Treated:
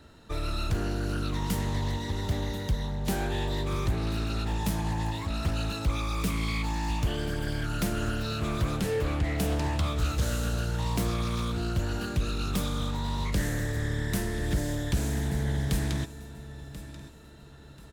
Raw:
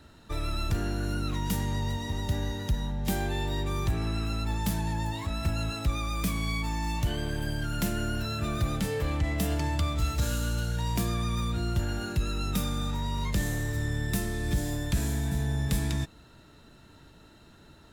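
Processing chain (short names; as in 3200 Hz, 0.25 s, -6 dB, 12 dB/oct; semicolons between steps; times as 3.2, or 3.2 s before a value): bell 470 Hz +4 dB 0.51 oct; on a send: feedback echo 1.036 s, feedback 35%, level -15 dB; on the sum: Doppler distortion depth 0.4 ms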